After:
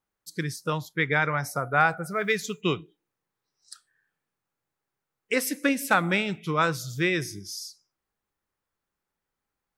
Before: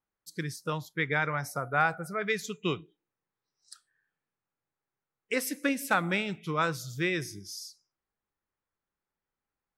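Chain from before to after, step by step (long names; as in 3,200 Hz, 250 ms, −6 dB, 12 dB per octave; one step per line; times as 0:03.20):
0:02.08–0:02.61: log-companded quantiser 8 bits
level +4.5 dB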